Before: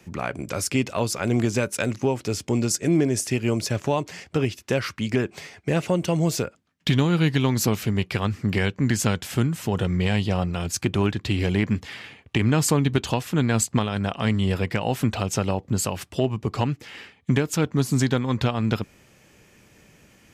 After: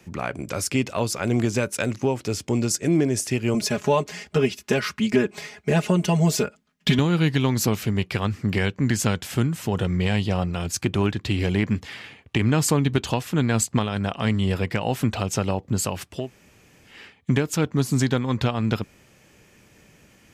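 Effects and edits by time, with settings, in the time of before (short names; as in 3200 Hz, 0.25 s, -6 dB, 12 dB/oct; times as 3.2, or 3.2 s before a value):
3.54–6.99 comb 4.8 ms, depth 95%
16.2–16.95 room tone, crossfade 0.24 s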